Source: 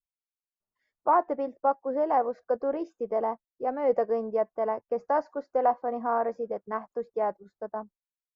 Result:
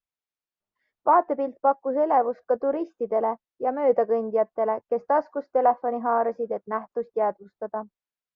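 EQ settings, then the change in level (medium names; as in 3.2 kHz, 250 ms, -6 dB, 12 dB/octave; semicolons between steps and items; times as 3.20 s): distance through air 140 m; bass shelf 64 Hz -7 dB; +4.5 dB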